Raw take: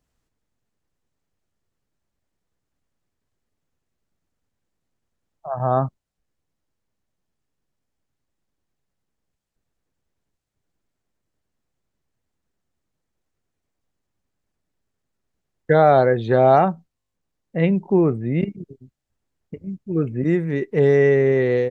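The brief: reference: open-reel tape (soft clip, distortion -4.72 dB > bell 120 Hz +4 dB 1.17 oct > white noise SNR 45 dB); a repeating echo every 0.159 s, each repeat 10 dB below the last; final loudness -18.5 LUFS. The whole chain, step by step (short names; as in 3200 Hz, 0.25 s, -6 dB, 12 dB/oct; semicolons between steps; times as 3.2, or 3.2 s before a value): feedback echo 0.159 s, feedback 32%, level -10 dB; soft clip -23.5 dBFS; bell 120 Hz +4 dB 1.17 oct; white noise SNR 45 dB; gain +9 dB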